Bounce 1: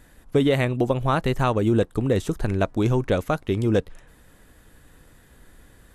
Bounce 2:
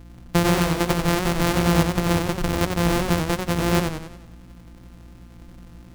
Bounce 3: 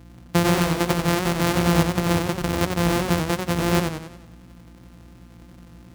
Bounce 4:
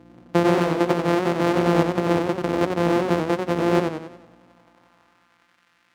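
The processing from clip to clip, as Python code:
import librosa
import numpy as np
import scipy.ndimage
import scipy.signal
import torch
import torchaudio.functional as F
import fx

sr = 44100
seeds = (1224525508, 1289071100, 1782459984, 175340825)

y1 = np.r_[np.sort(x[:len(x) // 256 * 256].reshape(-1, 256), axis=1).ravel(), x[len(x) // 256 * 256:]]
y1 = fx.add_hum(y1, sr, base_hz=60, snr_db=20)
y1 = fx.echo_warbled(y1, sr, ms=92, feedback_pct=47, rate_hz=2.8, cents=125, wet_db=-5.5)
y2 = scipy.signal.sosfilt(scipy.signal.butter(2, 62.0, 'highpass', fs=sr, output='sos'), y1)
y3 = fx.riaa(y2, sr, side='playback')
y3 = fx.filter_sweep_highpass(y3, sr, from_hz=380.0, to_hz=1700.0, start_s=4.03, end_s=5.62, q=1.1)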